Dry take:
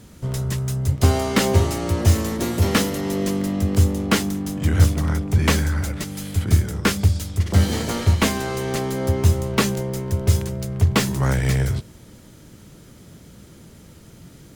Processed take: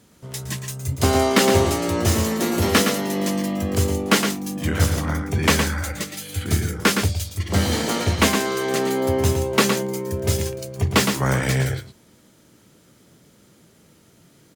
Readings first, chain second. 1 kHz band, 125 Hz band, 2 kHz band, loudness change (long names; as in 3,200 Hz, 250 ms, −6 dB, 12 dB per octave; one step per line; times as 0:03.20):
+3.5 dB, −4.5 dB, +4.0 dB, 0.0 dB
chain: on a send: single-tap delay 114 ms −6.5 dB
on the sum: noise reduction from a noise print of the clip's start 9 dB
high-pass filter 230 Hz 6 dB per octave
level +3 dB